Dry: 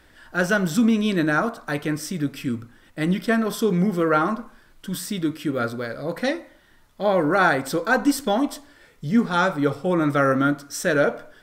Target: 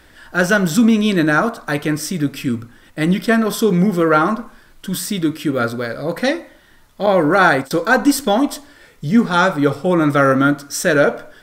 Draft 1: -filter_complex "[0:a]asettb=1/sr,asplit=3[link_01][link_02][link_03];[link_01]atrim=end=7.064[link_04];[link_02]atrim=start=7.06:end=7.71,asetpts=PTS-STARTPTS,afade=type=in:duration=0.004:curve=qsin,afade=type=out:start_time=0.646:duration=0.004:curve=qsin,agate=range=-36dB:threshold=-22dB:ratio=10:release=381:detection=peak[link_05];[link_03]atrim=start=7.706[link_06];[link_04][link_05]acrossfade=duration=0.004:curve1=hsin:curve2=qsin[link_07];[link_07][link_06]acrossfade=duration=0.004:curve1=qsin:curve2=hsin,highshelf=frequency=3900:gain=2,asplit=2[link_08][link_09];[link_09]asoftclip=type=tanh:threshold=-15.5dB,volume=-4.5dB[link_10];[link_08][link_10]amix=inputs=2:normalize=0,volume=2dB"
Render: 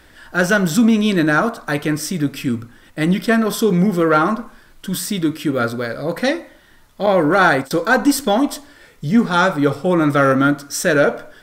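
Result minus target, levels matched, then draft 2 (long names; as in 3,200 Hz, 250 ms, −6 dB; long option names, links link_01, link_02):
soft clipping: distortion +12 dB
-filter_complex "[0:a]asettb=1/sr,asplit=3[link_01][link_02][link_03];[link_01]atrim=end=7.064[link_04];[link_02]atrim=start=7.06:end=7.71,asetpts=PTS-STARTPTS,afade=type=in:duration=0.004:curve=qsin,afade=type=out:start_time=0.646:duration=0.004:curve=qsin,agate=range=-36dB:threshold=-22dB:ratio=10:release=381:detection=peak[link_05];[link_03]atrim=start=7.706[link_06];[link_04][link_05]acrossfade=duration=0.004:curve1=hsin:curve2=qsin[link_07];[link_07][link_06]acrossfade=duration=0.004:curve1=qsin:curve2=hsin,highshelf=frequency=3900:gain=2,asplit=2[link_08][link_09];[link_09]asoftclip=type=tanh:threshold=-7.5dB,volume=-4.5dB[link_10];[link_08][link_10]amix=inputs=2:normalize=0,volume=2dB"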